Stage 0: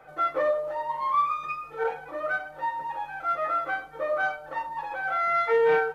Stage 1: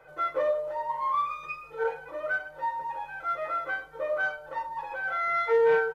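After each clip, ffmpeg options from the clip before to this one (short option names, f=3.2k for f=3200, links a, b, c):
-af "aecho=1:1:2:0.5,volume=-3.5dB"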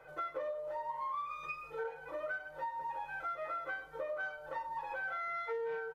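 -af "acompressor=threshold=-35dB:ratio=6,volume=-2dB"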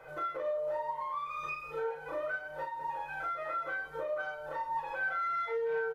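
-filter_complex "[0:a]alimiter=level_in=10dB:limit=-24dB:level=0:latency=1:release=249,volume=-10dB,asplit=2[a][b];[b]aecho=0:1:33|55:0.631|0.316[c];[a][c]amix=inputs=2:normalize=0,volume=4dB"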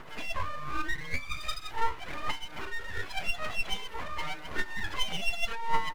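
-af "aphaser=in_gain=1:out_gain=1:delay=2.7:decay=0.69:speed=0.87:type=triangular,aeval=exprs='abs(val(0))':c=same,volume=3.5dB"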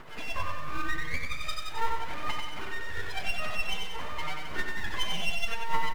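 -filter_complex "[0:a]acrusher=bits=9:mode=log:mix=0:aa=0.000001,asplit=2[a][b];[b]aecho=0:1:93|186|279|372|465|558|651:0.631|0.328|0.171|0.0887|0.0461|0.024|0.0125[c];[a][c]amix=inputs=2:normalize=0,volume=-1dB"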